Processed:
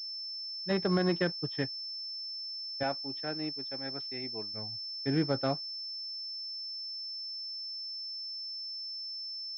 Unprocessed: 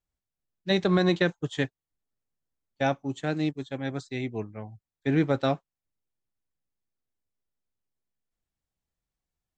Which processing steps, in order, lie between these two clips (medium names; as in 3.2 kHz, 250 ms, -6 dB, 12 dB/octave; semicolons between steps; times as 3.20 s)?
2.83–4.54 s: high-pass 390 Hz 6 dB/octave; class-D stage that switches slowly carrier 5.3 kHz; trim -5.5 dB